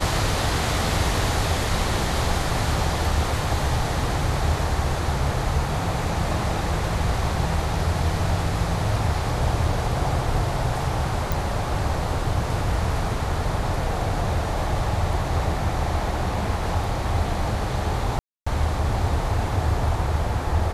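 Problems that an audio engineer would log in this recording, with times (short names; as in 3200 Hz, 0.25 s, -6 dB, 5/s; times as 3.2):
11.32 pop
18.19–18.46 gap 0.275 s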